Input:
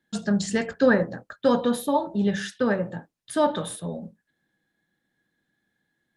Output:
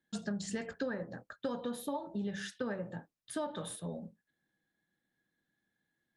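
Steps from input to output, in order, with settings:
downward compressor 12 to 1, threshold −25 dBFS, peak gain reduction 12.5 dB
level −8 dB

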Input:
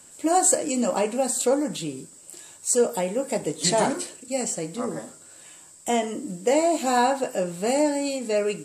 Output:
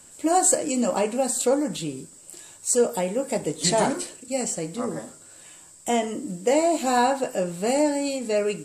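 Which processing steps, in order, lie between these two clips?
low-shelf EQ 71 Hz +9.5 dB

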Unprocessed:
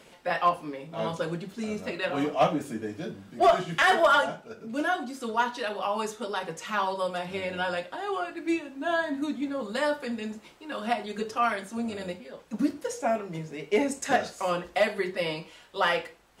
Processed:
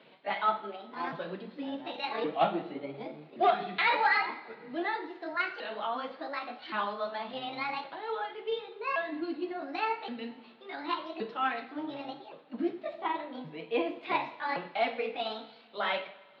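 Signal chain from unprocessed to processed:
pitch shifter swept by a sawtooth +8.5 semitones, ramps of 1,120 ms
Chebyshev band-pass filter 140–4,200 Hz, order 5
coupled-rooms reverb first 0.63 s, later 2.6 s, from −17 dB, DRR 8.5 dB
level −4 dB

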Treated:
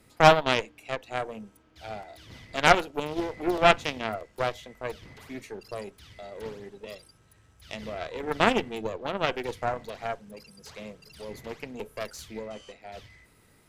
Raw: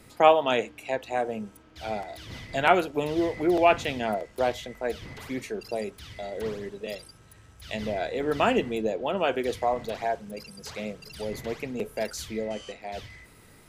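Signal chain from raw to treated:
harmonic generator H 4 −11 dB, 5 −30 dB, 7 −20 dB, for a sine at −5 dBFS

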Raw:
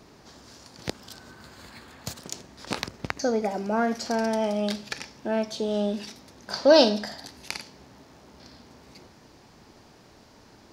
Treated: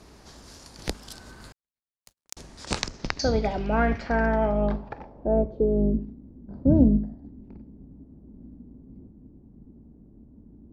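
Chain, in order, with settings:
sub-octave generator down 2 octaves, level +2 dB
low-pass filter sweep 11,000 Hz → 250 Hz, 0:02.39–0:06.13
0:01.52–0:02.37: power curve on the samples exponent 3

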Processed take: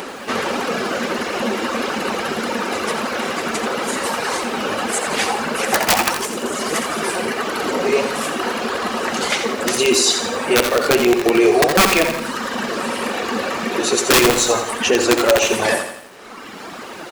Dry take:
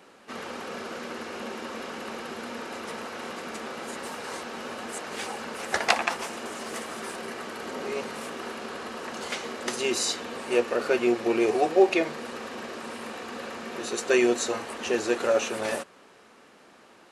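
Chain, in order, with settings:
reverb reduction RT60 1.6 s
in parallel at −2.5 dB: upward compression, threshold −29 dBFS
on the sum: flanger 1.6 Hz, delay 1.8 ms, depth 9.4 ms, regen +61%
wrap-around overflow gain 15 dB
on a send: repeating echo 65 ms, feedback 37%, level −14.5 dB
on the sum: boost into a limiter +20 dB
feedback echo at a low word length 85 ms, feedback 55%, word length 6 bits, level −8.5 dB
level −5.5 dB

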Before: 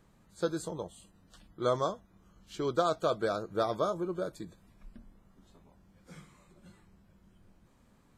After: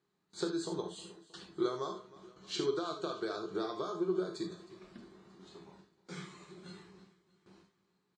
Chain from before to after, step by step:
noise gate with hold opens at −51 dBFS
downward compressor 12 to 1, threshold −40 dBFS, peak gain reduction 18 dB
loudspeaker in its box 190–7,500 Hz, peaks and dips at 240 Hz −8 dB, 370 Hz +9 dB, 560 Hz −9 dB, 4,200 Hz +7 dB
on a send: repeating echo 314 ms, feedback 56%, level −19.5 dB
on the sum: reverb whose tail is shaped and stops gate 100 ms flat, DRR 3 dB
level +6 dB

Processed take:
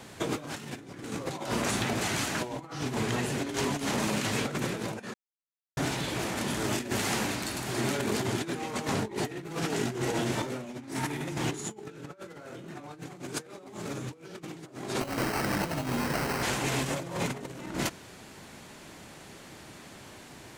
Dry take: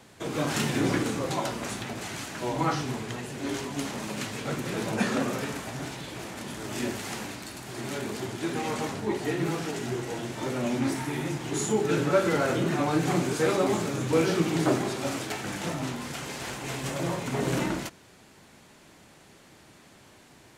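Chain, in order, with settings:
compressor whose output falls as the input rises −34 dBFS, ratio −0.5
0:05.14–0:05.77: silence
0:15.00–0:16.43: sample-rate reduction 3,500 Hz, jitter 0%
level +1.5 dB

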